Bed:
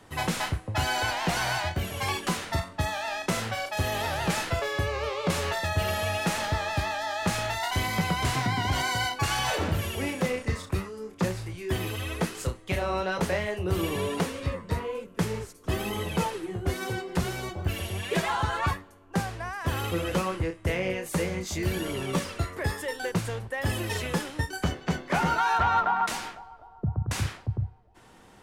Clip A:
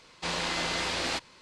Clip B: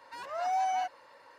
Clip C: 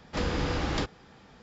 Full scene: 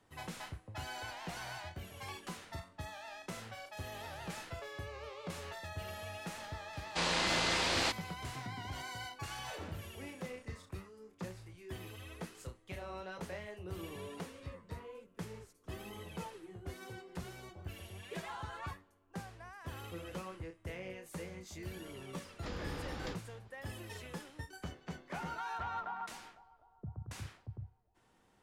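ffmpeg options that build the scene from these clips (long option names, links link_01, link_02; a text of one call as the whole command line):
ffmpeg -i bed.wav -i cue0.wav -i cue1.wav -i cue2.wav -filter_complex "[0:a]volume=-16.5dB[link_01];[1:a]atrim=end=1.41,asetpts=PTS-STARTPTS,volume=-1.5dB,afade=type=in:duration=0.004:curve=hsin,afade=type=out:start_time=1.406:duration=0.004:curve=hsin,adelay=6730[link_02];[3:a]atrim=end=1.42,asetpts=PTS-STARTPTS,volume=-13dB,afade=type=in:duration=0.004:curve=hsin,afade=type=out:start_time=1.416:duration=0.004:curve=hsin,adelay=22290[link_03];[link_01][link_02][link_03]amix=inputs=3:normalize=0" out.wav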